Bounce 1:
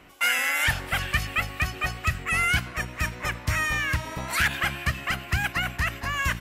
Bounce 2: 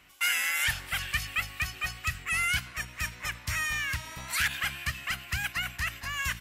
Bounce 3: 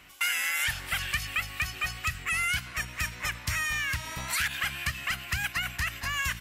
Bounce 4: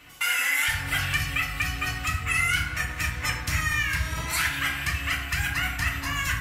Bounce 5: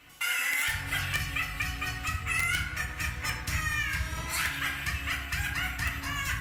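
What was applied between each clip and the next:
guitar amp tone stack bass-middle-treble 5-5-5; level +5.5 dB
downward compressor 2.5 to 1, threshold −33 dBFS, peak gain reduction 7 dB; level +5 dB
feedback delay network reverb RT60 1 s, low-frequency decay 1.5×, high-frequency decay 0.4×, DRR −3 dB
wrap-around overflow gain 13.5 dB; level −4.5 dB; Opus 48 kbit/s 48,000 Hz

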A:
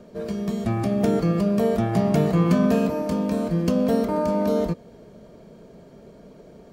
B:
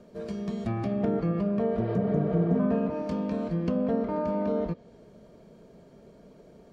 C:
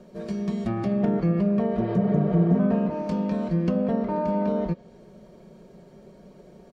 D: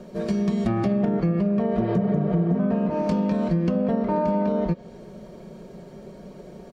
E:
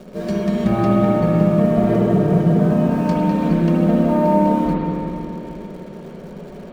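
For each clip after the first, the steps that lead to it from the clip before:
healed spectral selection 0:01.81–0:02.57, 370–5,400 Hz before; treble cut that deepens with the level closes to 1,600 Hz, closed at −16 dBFS; level −6 dB
comb filter 5.4 ms, depth 45%; level +2.5 dB
downward compressor, threshold −26 dBFS, peak gain reduction 10.5 dB; level +7 dB
in parallel at −12 dB: bit-depth reduction 6 bits, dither none; on the sum: spring reverb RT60 3.1 s, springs 56/60 ms, chirp 50 ms, DRR −4.5 dB

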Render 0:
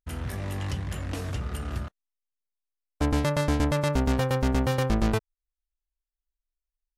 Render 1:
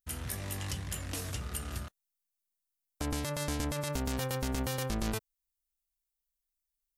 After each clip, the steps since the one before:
first-order pre-emphasis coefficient 0.8
brickwall limiter −27.5 dBFS, peak gain reduction 7.5 dB
level +6.5 dB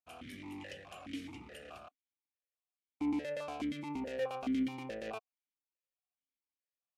formant filter that steps through the vowels 4.7 Hz
level +7.5 dB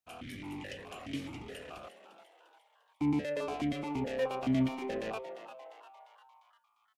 sub-octave generator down 1 octave, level −6 dB
echo with shifted repeats 349 ms, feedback 51%, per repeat +130 Hz, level −12 dB
level +3.5 dB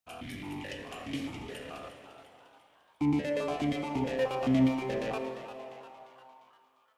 convolution reverb RT60 2.5 s, pre-delay 22 ms, DRR 7.5 dB
level +2.5 dB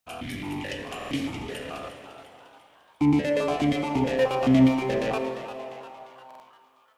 buffer that repeats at 0:00.97/0:06.26, samples 2,048, times 2
level +7 dB

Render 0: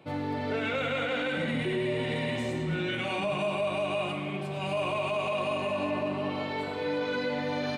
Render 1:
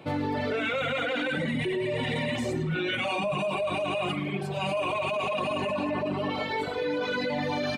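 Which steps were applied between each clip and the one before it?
reverb reduction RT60 1.9 s
in parallel at 0 dB: compressor whose output falls as the input rises −36 dBFS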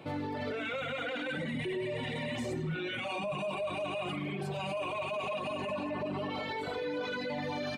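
brickwall limiter −26 dBFS, peak gain reduction 7.5 dB
level −2 dB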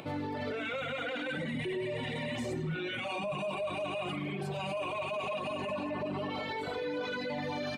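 upward compression, threshold −43 dBFS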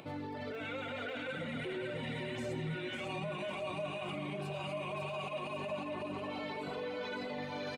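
repeating echo 550 ms, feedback 47%, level −5 dB
level −5.5 dB

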